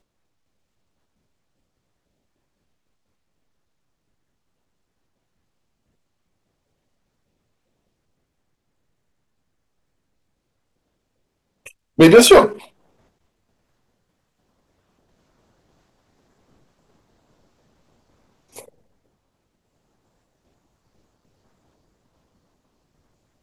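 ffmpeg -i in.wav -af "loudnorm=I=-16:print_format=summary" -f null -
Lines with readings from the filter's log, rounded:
Input Integrated:    -11.0 LUFS
Input True Peak:      -2.3 dBTP
Input LRA:            24.4 LU
Input Threshold:     -32.7 LUFS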